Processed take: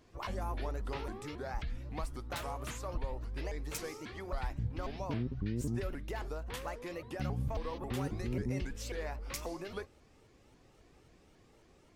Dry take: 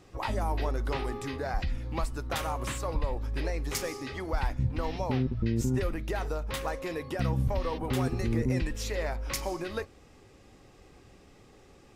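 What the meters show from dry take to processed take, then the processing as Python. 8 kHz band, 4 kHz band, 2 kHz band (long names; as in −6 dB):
−7.5 dB, −7.5 dB, −7.5 dB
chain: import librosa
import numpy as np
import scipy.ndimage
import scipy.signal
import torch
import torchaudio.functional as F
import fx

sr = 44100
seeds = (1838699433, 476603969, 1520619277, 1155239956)

y = fx.vibrato_shape(x, sr, shape='saw_up', rate_hz=3.7, depth_cents=250.0)
y = y * 10.0 ** (-7.5 / 20.0)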